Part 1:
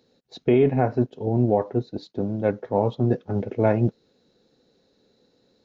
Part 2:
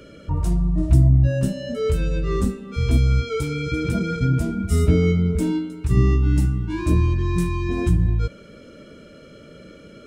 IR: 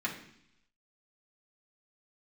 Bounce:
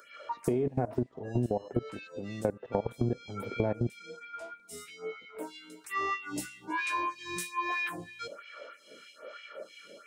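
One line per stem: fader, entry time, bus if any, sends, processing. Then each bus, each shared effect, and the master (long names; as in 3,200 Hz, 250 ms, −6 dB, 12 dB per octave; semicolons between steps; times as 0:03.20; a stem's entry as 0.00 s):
+2.5 dB, 0.00 s, no send, parametric band 2,600 Hz −7.5 dB 1.8 octaves; output level in coarse steps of 21 dB
+2.0 dB, 0.00 s, no send, auto-filter high-pass sine 3.1 Hz 600–2,500 Hz; phaser with staggered stages 1.2 Hz; automatic ducking −12 dB, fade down 1.55 s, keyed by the first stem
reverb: not used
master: downward compressor 6 to 1, threshold −26 dBFS, peak gain reduction 11 dB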